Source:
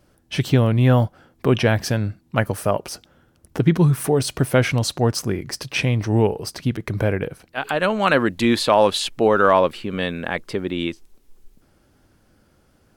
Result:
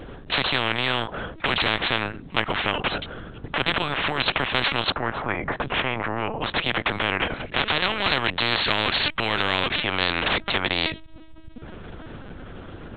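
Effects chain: LPC vocoder at 8 kHz pitch kept; 4.90–6.41 s: low-pass 1.3 kHz 12 dB/octave; spectrum-flattening compressor 10:1; trim -1.5 dB

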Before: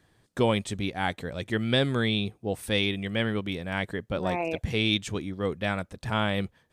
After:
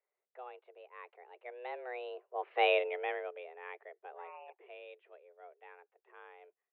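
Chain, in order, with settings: Doppler pass-by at 2.71 s, 16 m/s, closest 1.9 m; mistuned SSB +250 Hz 160–2400 Hz; trim +2 dB

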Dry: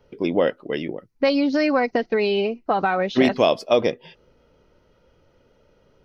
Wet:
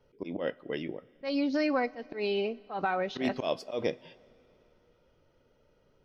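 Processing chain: slow attack 124 ms; two-slope reverb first 0.25 s, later 3.2 s, from -18 dB, DRR 16 dB; trim -8.5 dB

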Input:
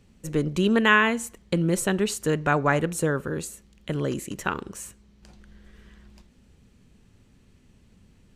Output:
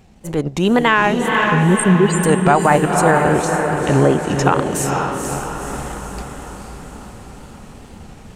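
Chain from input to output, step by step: 1.39–2.20 s: spectral contrast enhancement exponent 4; peaking EQ 790 Hz +12 dB 0.63 oct; in parallel at 0 dB: compression, threshold -29 dBFS, peak gain reduction 17.5 dB; on the sum: transient shaper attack -6 dB, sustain -10 dB; level rider gain up to 9 dB; 2.89–4.43 s: low-pass that closes with the level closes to 2.3 kHz, closed at -12.5 dBFS; wow and flutter 130 cents; on a send: echo that smears into a reverb 492 ms, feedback 56%, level -4.5 dB; on the sum: loudness maximiser +4.5 dB; trim -1 dB

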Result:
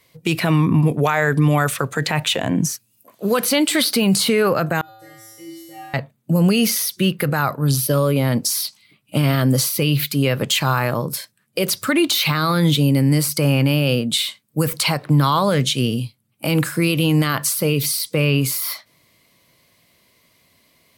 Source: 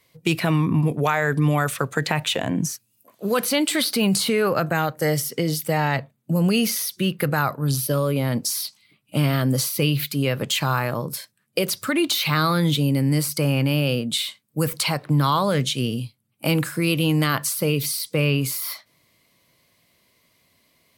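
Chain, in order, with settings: peak limiter -12 dBFS, peak gain reduction 6 dB; 4.81–5.94 s: feedback comb 110 Hz, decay 1.3 s, harmonics odd, mix 100%; trim +4.5 dB

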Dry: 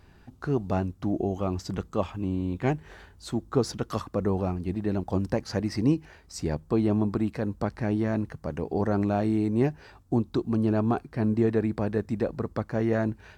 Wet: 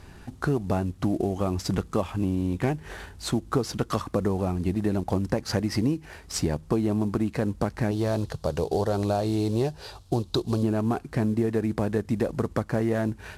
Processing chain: CVSD coder 64 kbps; 7.91–10.63 s: graphic EQ 250/500/2000/4000 Hz -10/+4/-9/+10 dB; compression, threshold -30 dBFS, peak gain reduction 12 dB; trim +8.5 dB

